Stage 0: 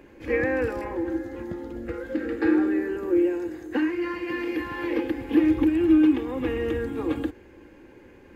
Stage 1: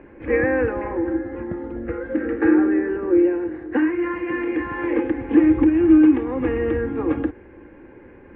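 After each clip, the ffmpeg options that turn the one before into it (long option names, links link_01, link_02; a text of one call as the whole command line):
ffmpeg -i in.wav -af "lowpass=frequency=2200:width=0.5412,lowpass=frequency=2200:width=1.3066,volume=5dB" out.wav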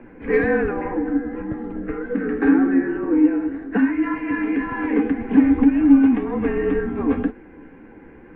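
ffmpeg -i in.wav -af "afreqshift=-39,acontrast=30,flanger=delay=7.7:depth=6.4:regen=43:speed=1.9:shape=triangular" out.wav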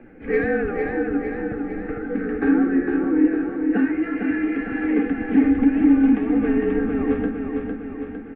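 ffmpeg -i in.wav -af "asuperstop=centerf=1000:order=4:qfactor=5.7,aecho=1:1:455|910|1365|1820|2275|2730|3185|3640:0.562|0.321|0.183|0.104|0.0594|0.0338|0.0193|0.011,volume=-2.5dB" out.wav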